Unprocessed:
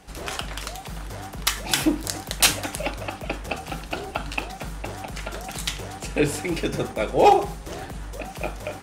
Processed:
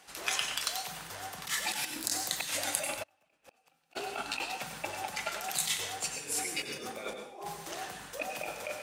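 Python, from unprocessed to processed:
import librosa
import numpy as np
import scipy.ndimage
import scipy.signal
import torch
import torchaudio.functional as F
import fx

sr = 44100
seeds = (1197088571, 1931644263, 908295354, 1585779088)

y = fx.noise_reduce_blind(x, sr, reduce_db=7)
y = fx.over_compress(y, sr, threshold_db=-33.0, ratio=-1.0)
y = fx.rev_plate(y, sr, seeds[0], rt60_s=0.56, hf_ratio=0.95, predelay_ms=80, drr_db=4.5)
y = fx.gate_flip(y, sr, shuts_db=-23.0, range_db=-34, at=(3.02, 3.95), fade=0.02)
y = fx.highpass(y, sr, hz=1300.0, slope=6)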